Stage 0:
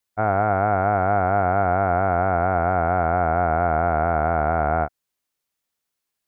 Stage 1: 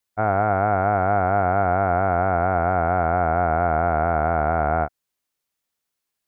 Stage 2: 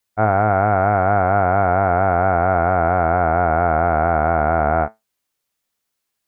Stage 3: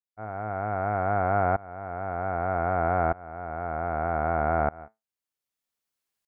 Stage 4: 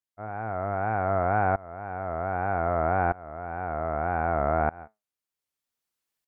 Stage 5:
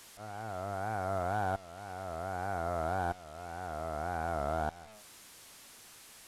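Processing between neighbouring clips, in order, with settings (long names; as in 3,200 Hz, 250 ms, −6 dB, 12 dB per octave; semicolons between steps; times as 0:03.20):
no processing that can be heard
tuned comb filter 110 Hz, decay 0.18 s, harmonics all, mix 50%; level +7.5 dB
shaped tremolo saw up 0.64 Hz, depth 95%; level −6.5 dB
tape wow and flutter 99 cents
linear delta modulator 64 kbit/s, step −38.5 dBFS; level −8.5 dB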